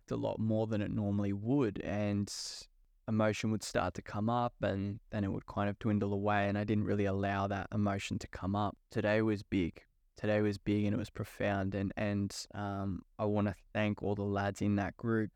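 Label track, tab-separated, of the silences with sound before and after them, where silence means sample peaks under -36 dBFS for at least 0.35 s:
2.540000	3.080000	silence
9.780000	10.240000	silence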